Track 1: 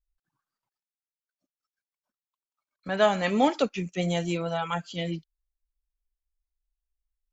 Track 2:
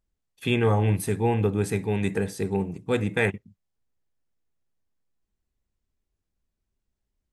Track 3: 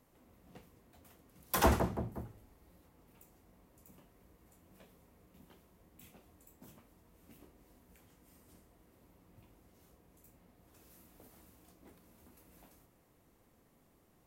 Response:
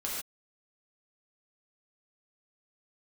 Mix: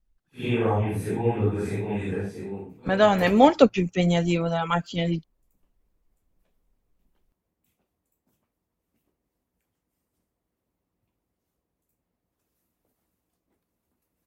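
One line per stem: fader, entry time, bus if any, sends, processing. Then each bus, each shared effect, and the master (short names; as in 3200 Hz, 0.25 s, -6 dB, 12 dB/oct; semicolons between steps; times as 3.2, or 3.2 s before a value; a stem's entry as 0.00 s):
+1.5 dB, 0.00 s, no send, tilt -2 dB/oct
-3.0 dB, 0.00 s, no send, phase scrambler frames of 0.2 s; high shelf 3400 Hz -11.5 dB; auto duck -11 dB, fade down 0.85 s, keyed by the first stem
-19.5 dB, 1.65 s, no send, dry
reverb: off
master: harmonic-percussive split percussive +6 dB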